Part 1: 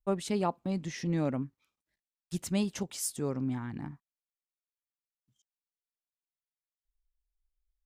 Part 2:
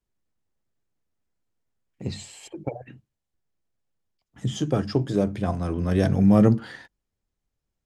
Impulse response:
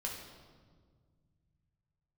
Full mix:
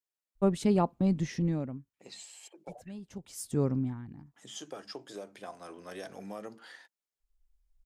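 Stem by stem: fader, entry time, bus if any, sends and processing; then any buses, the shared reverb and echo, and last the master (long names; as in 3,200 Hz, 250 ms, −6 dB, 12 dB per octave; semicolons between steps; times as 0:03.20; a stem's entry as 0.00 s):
+0.5 dB, 0.35 s, no send, spectral tilt −2.5 dB per octave; automatic ducking −21 dB, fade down 0.70 s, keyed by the second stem
−10.0 dB, 0.00 s, no send, high-pass filter 530 Hz 12 dB per octave; downward compressor 6 to 1, threshold −28 dBFS, peak gain reduction 8 dB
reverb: not used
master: high-shelf EQ 5,000 Hz +7 dB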